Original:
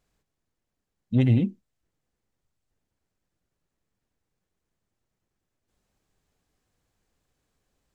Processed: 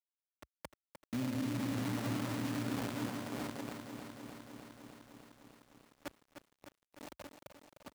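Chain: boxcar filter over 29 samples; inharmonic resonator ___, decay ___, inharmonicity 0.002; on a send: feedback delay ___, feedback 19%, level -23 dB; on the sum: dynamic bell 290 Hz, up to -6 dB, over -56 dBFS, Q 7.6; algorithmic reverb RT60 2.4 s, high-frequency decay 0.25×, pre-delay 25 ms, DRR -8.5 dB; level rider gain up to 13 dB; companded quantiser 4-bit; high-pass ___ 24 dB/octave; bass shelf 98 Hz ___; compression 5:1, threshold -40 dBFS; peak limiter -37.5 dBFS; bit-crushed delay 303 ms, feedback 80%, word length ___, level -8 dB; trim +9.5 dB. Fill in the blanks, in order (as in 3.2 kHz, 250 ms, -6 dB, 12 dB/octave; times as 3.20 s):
290 Hz, 0.38 s, 1098 ms, 58 Hz, -8 dB, 12-bit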